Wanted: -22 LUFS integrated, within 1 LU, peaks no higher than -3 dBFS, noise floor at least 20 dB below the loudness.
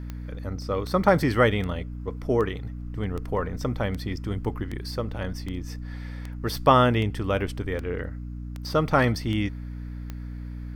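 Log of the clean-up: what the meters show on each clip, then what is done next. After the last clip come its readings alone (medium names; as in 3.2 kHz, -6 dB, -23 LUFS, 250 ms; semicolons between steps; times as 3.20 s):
clicks found 14; hum 60 Hz; highest harmonic 300 Hz; hum level -33 dBFS; loudness -26.0 LUFS; peak level -5.5 dBFS; loudness target -22.0 LUFS
-> de-click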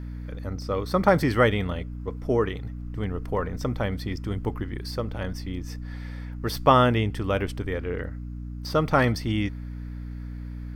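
clicks found 0; hum 60 Hz; highest harmonic 300 Hz; hum level -33 dBFS
-> de-hum 60 Hz, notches 5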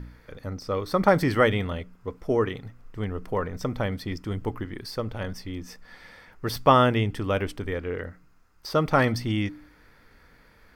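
hum not found; loudness -26.5 LUFS; peak level -5.5 dBFS; loudness target -22.0 LUFS
-> trim +4.5 dB; peak limiter -3 dBFS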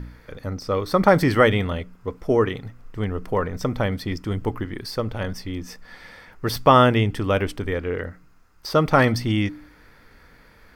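loudness -22.0 LUFS; peak level -3.0 dBFS; noise floor -52 dBFS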